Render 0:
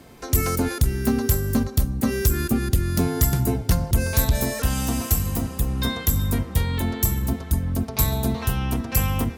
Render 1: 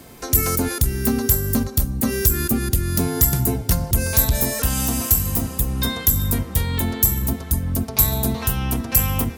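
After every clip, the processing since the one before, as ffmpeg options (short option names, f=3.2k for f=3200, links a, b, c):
-filter_complex "[0:a]asplit=2[a][b];[b]alimiter=limit=-18dB:level=0:latency=1:release=345,volume=0dB[c];[a][c]amix=inputs=2:normalize=0,highshelf=f=7.4k:g=10.5,volume=-3dB"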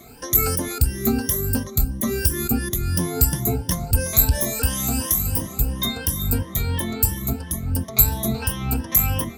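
-af "afftfilt=real='re*pow(10,17/40*sin(2*PI*(1.2*log(max(b,1)*sr/1024/100)/log(2)-(2.9)*(pts-256)/sr)))':imag='im*pow(10,17/40*sin(2*PI*(1.2*log(max(b,1)*sr/1024/100)/log(2)-(2.9)*(pts-256)/sr)))':win_size=1024:overlap=0.75,volume=-5dB"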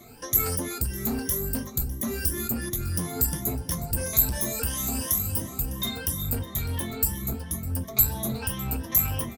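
-filter_complex "[0:a]flanger=delay=8.3:depth=7.5:regen=-45:speed=0.36:shape=triangular,acrossover=split=6600[a][b];[a]asoftclip=type=tanh:threshold=-24.5dB[c];[c][b]amix=inputs=2:normalize=0,aecho=1:1:604:0.106"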